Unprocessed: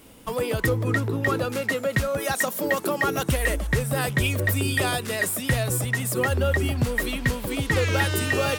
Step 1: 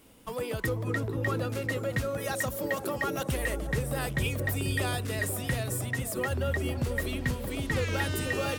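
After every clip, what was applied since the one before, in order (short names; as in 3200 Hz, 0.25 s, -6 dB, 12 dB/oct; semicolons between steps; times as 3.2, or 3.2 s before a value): dark delay 0.49 s, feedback 47%, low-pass 650 Hz, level -5 dB; gain -7.5 dB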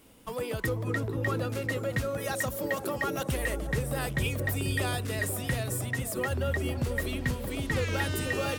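nothing audible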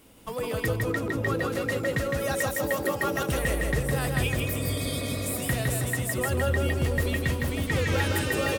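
spectral repair 4.39–5.31, 240–3100 Hz before; feedback echo 0.16 s, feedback 37%, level -3 dB; gain +2 dB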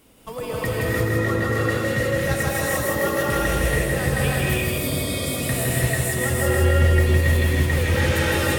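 non-linear reverb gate 0.37 s rising, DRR -4.5 dB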